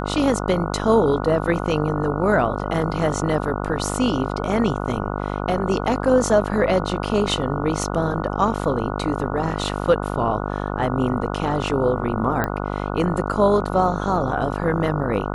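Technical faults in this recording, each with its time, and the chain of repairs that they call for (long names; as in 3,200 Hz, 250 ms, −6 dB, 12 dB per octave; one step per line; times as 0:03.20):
mains buzz 50 Hz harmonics 29 −26 dBFS
0:12.44: click −9 dBFS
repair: click removal
hum removal 50 Hz, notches 29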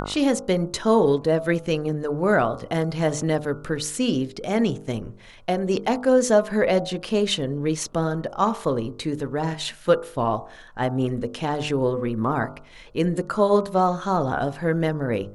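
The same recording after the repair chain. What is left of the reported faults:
none of them is left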